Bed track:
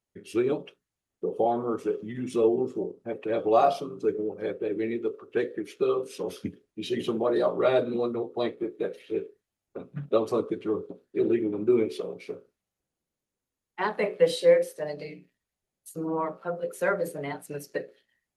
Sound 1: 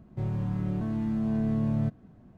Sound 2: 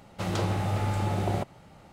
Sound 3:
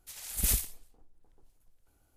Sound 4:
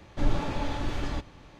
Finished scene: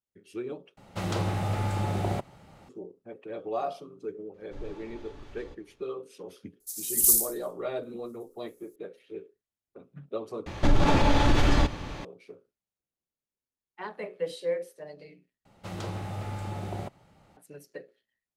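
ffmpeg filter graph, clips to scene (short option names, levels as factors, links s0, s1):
-filter_complex "[2:a]asplit=2[s0][s1];[4:a]asplit=2[s2][s3];[0:a]volume=0.299[s4];[3:a]aexciter=amount=12.4:drive=6.8:freq=4300[s5];[s3]alimiter=level_in=15.8:limit=0.891:release=50:level=0:latency=1[s6];[s4]asplit=4[s7][s8][s9][s10];[s7]atrim=end=0.774[s11];[s0]atrim=end=1.92,asetpts=PTS-STARTPTS,volume=0.891[s12];[s8]atrim=start=2.686:end=10.464[s13];[s6]atrim=end=1.59,asetpts=PTS-STARTPTS,volume=0.282[s14];[s9]atrim=start=12.046:end=15.454[s15];[s1]atrim=end=1.92,asetpts=PTS-STARTPTS,volume=0.422[s16];[s10]atrim=start=17.366[s17];[s2]atrim=end=1.59,asetpts=PTS-STARTPTS,volume=0.141,afade=t=in:d=0.004:c=hsin,afade=t=out:st=1.586:d=0.004:c=hsin,adelay=4340[s18];[s5]atrim=end=2.16,asetpts=PTS-STARTPTS,volume=0.15,afade=t=in:d=0.004:c=hsin,afade=t=out:st=2.156:d=0.004:c=hsin,adelay=6600[s19];[s11][s12]acrossfade=d=0.004:c1=hsin:c2=hsin[s20];[s20][s13]acrossfade=d=0.004:c1=hsin:c2=hsin[s21];[s21][s14]acrossfade=d=0.004:c1=hsin:c2=hsin[s22];[s22][s15]acrossfade=d=0.004:c1=hsin:c2=hsin[s23];[s23][s16]acrossfade=d=0.004:c1=hsin:c2=hsin[s24];[s24][s17]acrossfade=d=0.004:c1=hsin:c2=hsin[s25];[s25][s18][s19]amix=inputs=3:normalize=0"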